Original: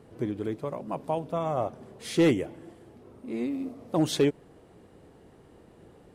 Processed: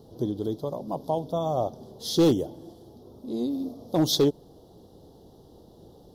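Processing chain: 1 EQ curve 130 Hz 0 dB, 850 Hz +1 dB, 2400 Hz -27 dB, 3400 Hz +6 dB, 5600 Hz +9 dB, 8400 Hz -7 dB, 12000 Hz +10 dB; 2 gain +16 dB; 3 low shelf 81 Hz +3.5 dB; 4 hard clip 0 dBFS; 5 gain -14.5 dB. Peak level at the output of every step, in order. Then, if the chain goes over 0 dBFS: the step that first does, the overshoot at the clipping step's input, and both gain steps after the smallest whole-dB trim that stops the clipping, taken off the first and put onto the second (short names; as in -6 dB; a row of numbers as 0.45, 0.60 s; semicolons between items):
-12.5, +3.5, +3.5, 0.0, -14.5 dBFS; step 2, 3.5 dB; step 2 +12 dB, step 5 -10.5 dB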